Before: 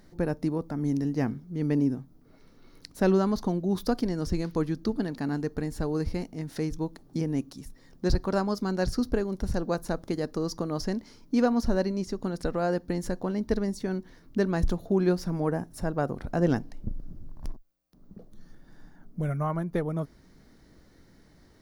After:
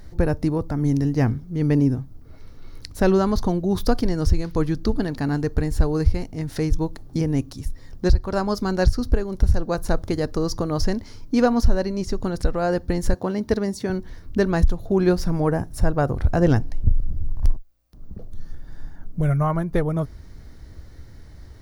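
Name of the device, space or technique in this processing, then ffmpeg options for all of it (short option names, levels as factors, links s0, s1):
car stereo with a boomy subwoofer: -filter_complex "[0:a]asettb=1/sr,asplit=3[s0][s1][s2];[s0]atrim=end=13.134[s3];[s1]atrim=start=13.13:end=13.9,asetpts=PTS-STARTPTS,afade=t=in:d=0.004:c=qsin,afade=t=out:st=0.766:d=0.004:c=qsin,highpass=130[s4];[s2]atrim=start=13.896[s5];[s3][s4]acrossfade=d=0.004:c1=hsin:c2=qsin[s6];[s6][s5]acrossfade=d=0.004:c1=qsin:c2=hsin,lowshelf=f=130:t=q:w=1.5:g=11,alimiter=limit=0.211:level=0:latency=1:release=361,volume=2.24"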